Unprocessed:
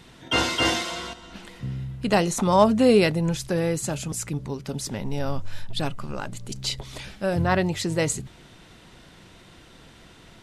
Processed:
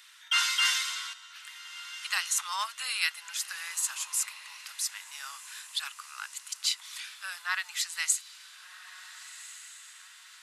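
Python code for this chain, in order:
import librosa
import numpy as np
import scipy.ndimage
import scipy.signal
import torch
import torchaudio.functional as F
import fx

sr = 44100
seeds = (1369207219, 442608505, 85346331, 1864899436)

p1 = scipy.signal.sosfilt(scipy.signal.butter(6, 1200.0, 'highpass', fs=sr, output='sos'), x)
p2 = fx.high_shelf(p1, sr, hz=8000.0, db=9.0)
p3 = p2 + fx.echo_diffused(p2, sr, ms=1456, feedback_pct=44, wet_db=-15.0, dry=0)
y = p3 * librosa.db_to_amplitude(-2.0)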